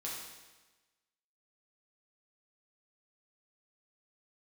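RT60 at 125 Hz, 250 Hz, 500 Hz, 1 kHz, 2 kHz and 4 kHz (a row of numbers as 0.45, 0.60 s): 1.2, 1.2, 1.2, 1.2, 1.2, 1.2 s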